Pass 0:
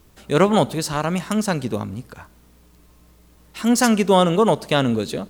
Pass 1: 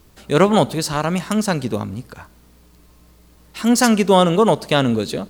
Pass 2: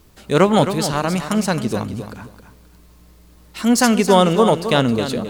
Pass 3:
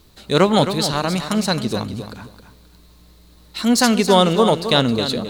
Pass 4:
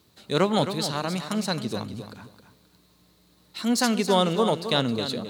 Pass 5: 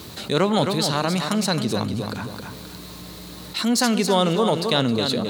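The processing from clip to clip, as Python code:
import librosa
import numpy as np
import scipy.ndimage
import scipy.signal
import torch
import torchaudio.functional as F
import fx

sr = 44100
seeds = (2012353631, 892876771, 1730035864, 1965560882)

y1 = fx.peak_eq(x, sr, hz=4500.0, db=3.0, octaves=0.26)
y1 = F.gain(torch.from_numpy(y1), 2.0).numpy()
y2 = fx.echo_feedback(y1, sr, ms=266, feedback_pct=22, wet_db=-10.0)
y3 = fx.peak_eq(y2, sr, hz=4000.0, db=11.0, octaves=0.35)
y3 = F.gain(torch.from_numpy(y3), -1.0).numpy()
y4 = scipy.signal.sosfilt(scipy.signal.butter(4, 86.0, 'highpass', fs=sr, output='sos'), y3)
y4 = F.gain(torch.from_numpy(y4), -7.5).numpy()
y5 = fx.env_flatten(y4, sr, amount_pct=50)
y5 = F.gain(torch.from_numpy(y5), 1.0).numpy()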